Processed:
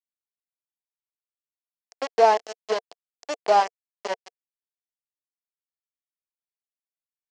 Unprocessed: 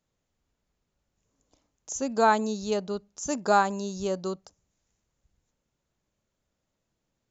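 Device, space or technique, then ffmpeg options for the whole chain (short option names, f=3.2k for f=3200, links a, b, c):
hand-held game console: -af "acrusher=bits=3:mix=0:aa=0.000001,highpass=450,equalizer=f=460:t=q:w=4:g=7,equalizer=f=700:t=q:w=4:g=9,equalizer=f=1.4k:t=q:w=4:g=-8,equalizer=f=2.5k:t=q:w=4:g=-4,equalizer=f=3.7k:t=q:w=4:g=-9,lowpass=f=5.2k:w=0.5412,lowpass=f=5.2k:w=1.3066"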